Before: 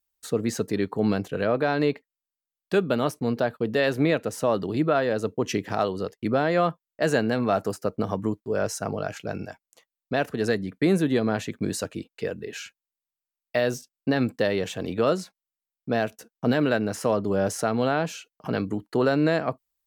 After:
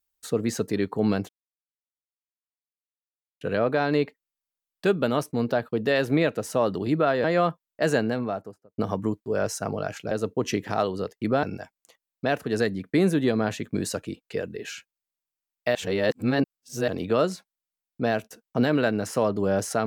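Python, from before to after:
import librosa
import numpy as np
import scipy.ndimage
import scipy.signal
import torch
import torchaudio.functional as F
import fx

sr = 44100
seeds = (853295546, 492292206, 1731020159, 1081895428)

y = fx.studio_fade_out(x, sr, start_s=7.06, length_s=0.92)
y = fx.edit(y, sr, fx.insert_silence(at_s=1.29, length_s=2.12),
    fx.move(start_s=5.12, length_s=1.32, to_s=9.31),
    fx.reverse_span(start_s=13.63, length_s=1.13), tone=tone)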